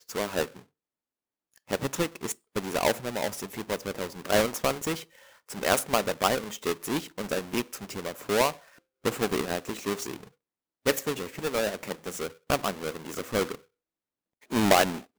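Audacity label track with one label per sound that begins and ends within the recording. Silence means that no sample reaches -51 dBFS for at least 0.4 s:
1.560000	10.280000	sound
10.860000	13.600000	sound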